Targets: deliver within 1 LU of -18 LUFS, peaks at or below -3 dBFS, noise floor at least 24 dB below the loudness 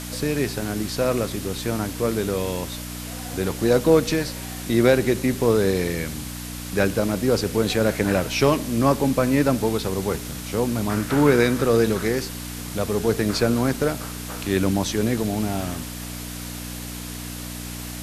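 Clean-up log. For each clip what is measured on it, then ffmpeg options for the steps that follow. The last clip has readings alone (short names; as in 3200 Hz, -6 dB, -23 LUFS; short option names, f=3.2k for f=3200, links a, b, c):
hum 60 Hz; harmonics up to 300 Hz; hum level -32 dBFS; noise floor -34 dBFS; noise floor target -47 dBFS; loudness -23.0 LUFS; peak -4.0 dBFS; loudness target -18.0 LUFS
-> -af "bandreject=f=60:t=h:w=4,bandreject=f=120:t=h:w=4,bandreject=f=180:t=h:w=4,bandreject=f=240:t=h:w=4,bandreject=f=300:t=h:w=4"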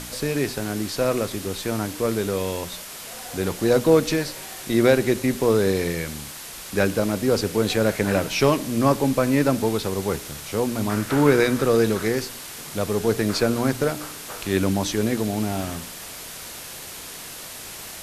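hum none; noise floor -38 dBFS; noise floor target -47 dBFS
-> -af "afftdn=nr=9:nf=-38"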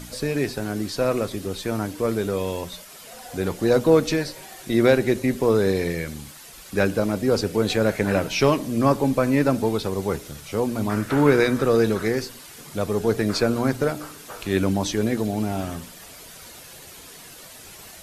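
noise floor -43 dBFS; noise floor target -47 dBFS
-> -af "afftdn=nr=6:nf=-43"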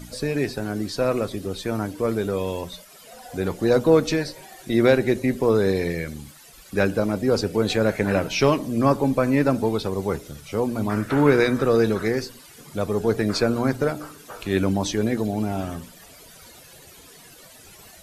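noise floor -47 dBFS; loudness -23.0 LUFS; peak -4.5 dBFS; loudness target -18.0 LUFS
-> -af "volume=5dB,alimiter=limit=-3dB:level=0:latency=1"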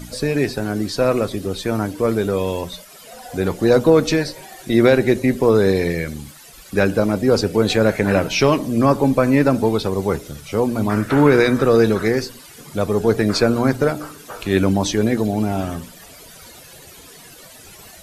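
loudness -18.0 LUFS; peak -3.0 dBFS; noise floor -42 dBFS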